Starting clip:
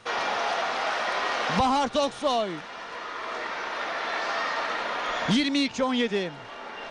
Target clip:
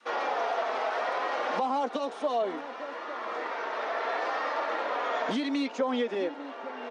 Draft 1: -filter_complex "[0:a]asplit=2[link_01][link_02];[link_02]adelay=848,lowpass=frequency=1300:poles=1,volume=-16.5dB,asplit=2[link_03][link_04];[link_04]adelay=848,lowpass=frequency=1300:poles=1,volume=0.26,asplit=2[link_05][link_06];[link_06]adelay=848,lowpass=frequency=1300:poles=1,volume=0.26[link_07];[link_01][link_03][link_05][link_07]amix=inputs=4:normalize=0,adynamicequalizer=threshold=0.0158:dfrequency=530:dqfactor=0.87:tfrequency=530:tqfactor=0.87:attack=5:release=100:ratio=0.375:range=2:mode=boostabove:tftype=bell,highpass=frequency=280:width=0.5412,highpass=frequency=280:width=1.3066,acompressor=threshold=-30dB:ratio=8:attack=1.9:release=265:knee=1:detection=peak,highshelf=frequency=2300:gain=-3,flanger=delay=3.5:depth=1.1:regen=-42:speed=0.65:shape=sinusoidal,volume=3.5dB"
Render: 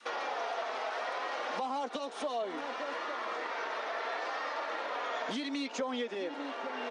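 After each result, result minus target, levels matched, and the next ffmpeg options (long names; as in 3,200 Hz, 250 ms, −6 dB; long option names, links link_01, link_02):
downward compressor: peak gain reduction +7.5 dB; 4,000 Hz band +4.0 dB
-filter_complex "[0:a]asplit=2[link_01][link_02];[link_02]adelay=848,lowpass=frequency=1300:poles=1,volume=-16.5dB,asplit=2[link_03][link_04];[link_04]adelay=848,lowpass=frequency=1300:poles=1,volume=0.26,asplit=2[link_05][link_06];[link_06]adelay=848,lowpass=frequency=1300:poles=1,volume=0.26[link_07];[link_01][link_03][link_05][link_07]amix=inputs=4:normalize=0,adynamicequalizer=threshold=0.0158:dfrequency=530:dqfactor=0.87:tfrequency=530:tqfactor=0.87:attack=5:release=100:ratio=0.375:range=2:mode=boostabove:tftype=bell,highpass=frequency=280:width=0.5412,highpass=frequency=280:width=1.3066,acompressor=threshold=-21.5dB:ratio=8:attack=1.9:release=265:knee=1:detection=peak,highshelf=frequency=2300:gain=-3,flanger=delay=3.5:depth=1.1:regen=-42:speed=0.65:shape=sinusoidal,volume=3.5dB"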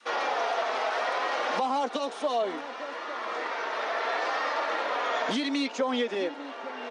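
4,000 Hz band +4.0 dB
-filter_complex "[0:a]asplit=2[link_01][link_02];[link_02]adelay=848,lowpass=frequency=1300:poles=1,volume=-16.5dB,asplit=2[link_03][link_04];[link_04]adelay=848,lowpass=frequency=1300:poles=1,volume=0.26,asplit=2[link_05][link_06];[link_06]adelay=848,lowpass=frequency=1300:poles=1,volume=0.26[link_07];[link_01][link_03][link_05][link_07]amix=inputs=4:normalize=0,adynamicequalizer=threshold=0.0158:dfrequency=530:dqfactor=0.87:tfrequency=530:tqfactor=0.87:attack=5:release=100:ratio=0.375:range=2:mode=boostabove:tftype=bell,highpass=frequency=280:width=0.5412,highpass=frequency=280:width=1.3066,acompressor=threshold=-21.5dB:ratio=8:attack=1.9:release=265:knee=1:detection=peak,highshelf=frequency=2300:gain=-11,flanger=delay=3.5:depth=1.1:regen=-42:speed=0.65:shape=sinusoidal,volume=3.5dB"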